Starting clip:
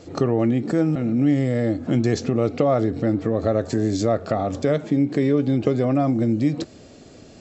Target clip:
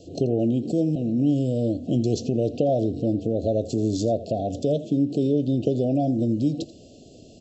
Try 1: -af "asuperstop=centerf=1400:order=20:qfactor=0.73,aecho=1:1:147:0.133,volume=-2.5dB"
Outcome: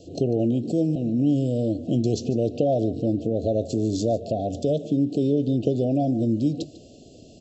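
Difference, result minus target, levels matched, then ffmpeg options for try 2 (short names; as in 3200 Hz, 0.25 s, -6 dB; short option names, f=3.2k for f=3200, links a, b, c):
echo 63 ms late
-af "asuperstop=centerf=1400:order=20:qfactor=0.73,aecho=1:1:84:0.133,volume=-2.5dB"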